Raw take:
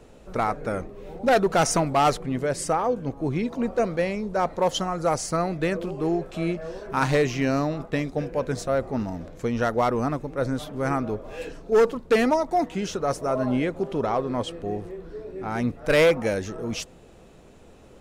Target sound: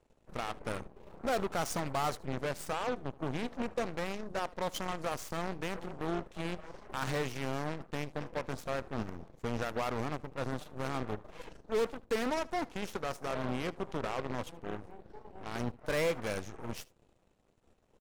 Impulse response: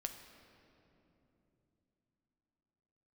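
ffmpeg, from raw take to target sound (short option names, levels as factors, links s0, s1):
-af "lowshelf=f=140:g=3.5,alimiter=limit=0.119:level=0:latency=1:release=14,aeval=exprs='0.119*(cos(1*acos(clip(val(0)/0.119,-1,1)))-cos(1*PI/2))+0.0335*(cos(3*acos(clip(val(0)/0.119,-1,1)))-cos(3*PI/2))+0.0106*(cos(8*acos(clip(val(0)/0.119,-1,1)))-cos(8*PI/2))':c=same,aecho=1:1:76:0.0708,volume=0.447"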